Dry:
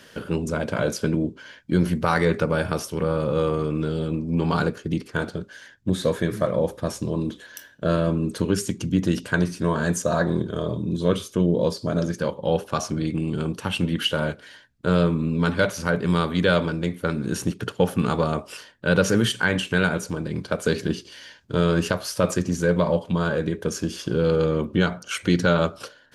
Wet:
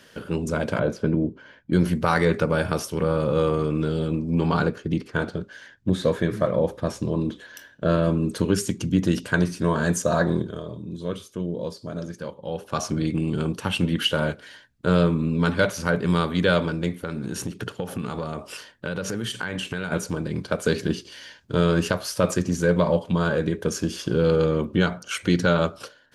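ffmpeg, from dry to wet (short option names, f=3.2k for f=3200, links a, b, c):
-filter_complex "[0:a]asettb=1/sr,asplit=3[a][b][c];[a]atrim=end=0.794[d];[b]atrim=start=0.79:end=1.73,asetpts=PTS-STARTPTS,afade=t=in:d=0.004:c=qsin,afade=t=out:st=0.936:d=0.004:c=qsin,lowpass=f=1.1k:p=1[e];[c]atrim=start=1.726[f];[d][e]acrossfade=d=0.004:c1=hsin:c2=qsin[g];[g][f]acrossfade=d=0.004:c1=qsin:c2=hsin,asettb=1/sr,asplit=3[h][i][j];[h]atrim=end=4.484[k];[i]atrim=start=4.48:end=8.03,asetpts=PTS-STARTPTS,afade=t=in:d=0.004:c=qsin,afade=t=out:st=3.546:d=0.004:c=qsin,highshelf=f=6.6k:g=-10[l];[j]atrim=start=8.026[m];[k][l]acrossfade=d=0.004:c1=hsin:c2=qsin[n];[n][m]acrossfade=d=0.004:c1=qsin:c2=hsin,asettb=1/sr,asplit=3[o][p][q];[o]atrim=end=17.034[r];[p]atrim=start=17.03:end=19.92,asetpts=PTS-STARTPTS,afade=t=in:d=0.004:c=qsin,afade=t=out:st=2.886:d=0.004:c=qsin,acompressor=threshold=-26dB:ratio=6:attack=3.2:release=140:knee=1:detection=peak[s];[q]atrim=start=19.916[t];[r][s]acrossfade=d=0.004:c1=hsin:c2=qsin[u];[u][t]acrossfade=d=0.004:c1=qsin:c2=hsin,asplit=3[v][w][x];[v]atrim=end=10.63,asetpts=PTS-STARTPTS,afade=t=out:st=10.32:d=0.31:silence=0.334965[y];[w]atrim=start=10.63:end=12.56,asetpts=PTS-STARTPTS,volume=-9.5dB[z];[x]atrim=start=12.56,asetpts=PTS-STARTPTS,afade=t=in:d=0.31:silence=0.334965[aa];[y][z][aa]concat=n=3:v=0:a=1,dynaudnorm=f=110:g=7:m=4dB,volume=-3dB"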